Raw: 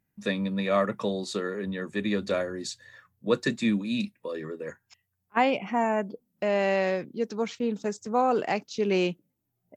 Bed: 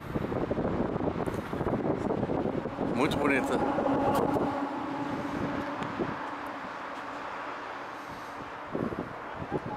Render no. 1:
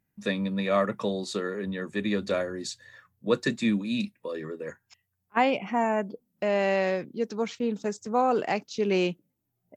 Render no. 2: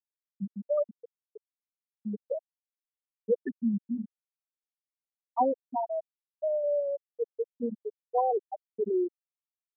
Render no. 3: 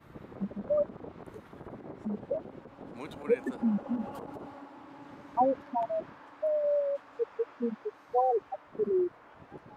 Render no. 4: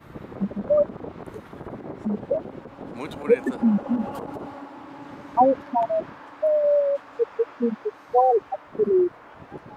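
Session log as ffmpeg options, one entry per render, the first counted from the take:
ffmpeg -i in.wav -af anull out.wav
ffmpeg -i in.wav -af "afftfilt=real='re*gte(hypot(re,im),0.447)':imag='im*gte(hypot(re,im),0.447)':win_size=1024:overlap=0.75,highpass=frequency=160:poles=1" out.wav
ffmpeg -i in.wav -i bed.wav -filter_complex "[1:a]volume=-15.5dB[link_01];[0:a][link_01]amix=inputs=2:normalize=0" out.wav
ffmpeg -i in.wav -af "volume=8.5dB" out.wav

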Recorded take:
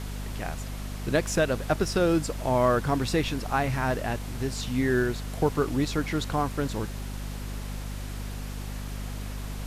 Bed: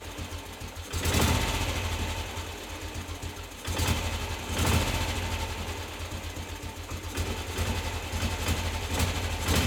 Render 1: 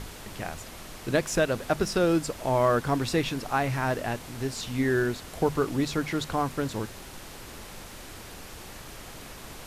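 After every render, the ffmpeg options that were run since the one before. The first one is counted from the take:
ffmpeg -i in.wav -af "bandreject=frequency=50:width_type=h:width=6,bandreject=frequency=100:width_type=h:width=6,bandreject=frequency=150:width_type=h:width=6,bandreject=frequency=200:width_type=h:width=6,bandreject=frequency=250:width_type=h:width=6" out.wav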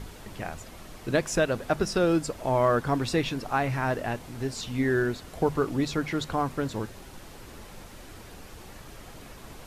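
ffmpeg -i in.wav -af "afftdn=noise_reduction=6:noise_floor=-44" out.wav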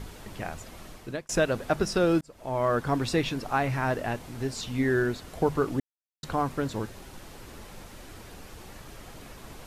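ffmpeg -i in.wav -filter_complex "[0:a]asplit=5[link_01][link_02][link_03][link_04][link_05];[link_01]atrim=end=1.29,asetpts=PTS-STARTPTS,afade=type=out:start_time=0.88:duration=0.41[link_06];[link_02]atrim=start=1.29:end=2.21,asetpts=PTS-STARTPTS,afade=type=in:duration=0.004:curve=hsin,afade=type=out:start_time=0.916:duration=0.004:curve=hsin[link_07];[link_03]atrim=start=2.21:end=5.8,asetpts=PTS-STARTPTS,afade=type=in:duration=0.9:curve=qsin,afade=type=out:start_time=3.586:duration=0.004:curve=hsin[link_08];[link_04]atrim=start=5.8:end=6.23,asetpts=PTS-STARTPTS,volume=0[link_09];[link_05]atrim=start=6.23,asetpts=PTS-STARTPTS,afade=type=in:duration=0.004:curve=hsin[link_10];[link_06][link_07][link_08][link_09][link_10]concat=n=5:v=0:a=1" out.wav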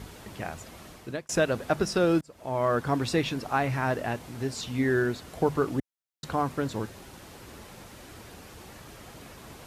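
ffmpeg -i in.wav -af "highpass=58" out.wav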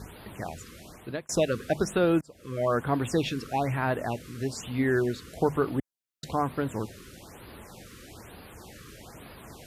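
ffmpeg -i in.wav -af "afftfilt=real='re*(1-between(b*sr/1024,710*pow(7200/710,0.5+0.5*sin(2*PI*1.1*pts/sr))/1.41,710*pow(7200/710,0.5+0.5*sin(2*PI*1.1*pts/sr))*1.41))':imag='im*(1-between(b*sr/1024,710*pow(7200/710,0.5+0.5*sin(2*PI*1.1*pts/sr))/1.41,710*pow(7200/710,0.5+0.5*sin(2*PI*1.1*pts/sr))*1.41))':win_size=1024:overlap=0.75" out.wav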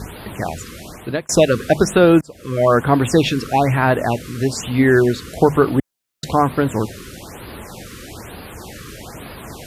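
ffmpeg -i in.wav -af "volume=12dB,alimiter=limit=-1dB:level=0:latency=1" out.wav

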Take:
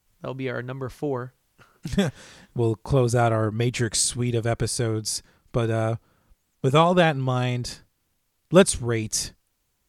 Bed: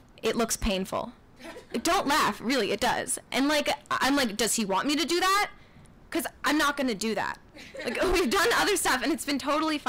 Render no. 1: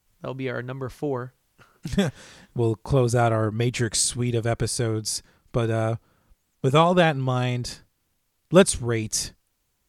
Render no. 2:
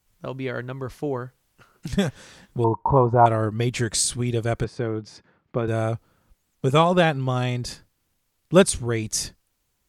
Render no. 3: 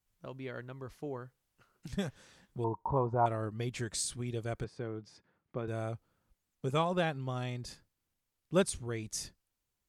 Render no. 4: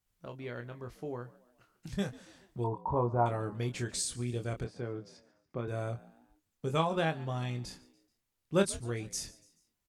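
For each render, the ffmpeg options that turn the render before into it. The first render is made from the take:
ffmpeg -i in.wav -af anull out.wav
ffmpeg -i in.wav -filter_complex "[0:a]asettb=1/sr,asplit=3[link_01][link_02][link_03];[link_01]atrim=end=2.644[link_04];[link_02]atrim=start=2.64:end=3.26,asetpts=PTS-STARTPTS,afade=type=in:duration=0.004:curve=qsin,afade=type=out:start_time=0.616:duration=0.004:curve=qsin,lowpass=frequency=940:width_type=q:width=11[link_05];[link_03]atrim=start=3.256[link_06];[link_04][link_05]acrossfade=duration=0.004:curve1=hsin:curve2=qsin[link_07];[link_07][link_06]acrossfade=duration=0.004:curve1=qsin:curve2=hsin,asettb=1/sr,asplit=3[link_08][link_09][link_10];[link_08]atrim=end=4.644[link_11];[link_09]atrim=start=4.64:end=5.68,asetpts=PTS-STARTPTS,afade=type=in:duration=0.004:curve=qsin,afade=type=out:start_time=1.036:duration=0.004:curve=qsin,highpass=130,lowpass=2100[link_12];[link_10]atrim=start=5.676[link_13];[link_11][link_12]acrossfade=duration=0.004:curve1=hsin:curve2=qsin[link_14];[link_14][link_13]acrossfade=duration=0.004:curve1=qsin:curve2=hsin" out.wav
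ffmpeg -i in.wav -af "volume=-13dB" out.wav
ffmpeg -i in.wav -filter_complex "[0:a]asplit=2[link_01][link_02];[link_02]adelay=25,volume=-7dB[link_03];[link_01][link_03]amix=inputs=2:normalize=0,asplit=4[link_04][link_05][link_06][link_07];[link_05]adelay=143,afreqshift=63,volume=-21dB[link_08];[link_06]adelay=286,afreqshift=126,volume=-27.9dB[link_09];[link_07]adelay=429,afreqshift=189,volume=-34.9dB[link_10];[link_04][link_08][link_09][link_10]amix=inputs=4:normalize=0" out.wav

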